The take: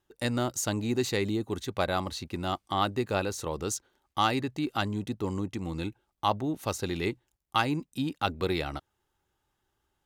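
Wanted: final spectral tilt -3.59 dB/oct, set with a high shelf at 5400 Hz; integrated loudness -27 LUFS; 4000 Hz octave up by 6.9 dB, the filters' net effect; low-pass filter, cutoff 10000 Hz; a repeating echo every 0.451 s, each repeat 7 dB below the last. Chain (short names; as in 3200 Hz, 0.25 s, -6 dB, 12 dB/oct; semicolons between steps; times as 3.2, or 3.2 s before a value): LPF 10000 Hz; bell 4000 Hz +6.5 dB; high shelf 5400 Hz +5 dB; feedback echo 0.451 s, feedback 45%, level -7 dB; gain +1.5 dB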